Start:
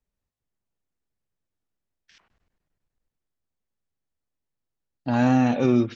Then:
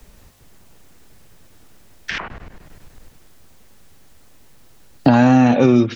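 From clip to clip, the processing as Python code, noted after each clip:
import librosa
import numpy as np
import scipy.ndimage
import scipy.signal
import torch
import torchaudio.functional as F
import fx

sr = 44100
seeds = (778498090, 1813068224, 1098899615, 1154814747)

y = fx.band_squash(x, sr, depth_pct=100)
y = F.gain(torch.from_numpy(y), 7.0).numpy()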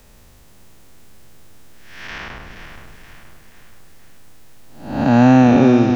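y = fx.spec_blur(x, sr, span_ms=304.0)
y = fx.echo_feedback(y, sr, ms=475, feedback_pct=49, wet_db=-9.0)
y = F.gain(torch.from_numpy(y), 3.0).numpy()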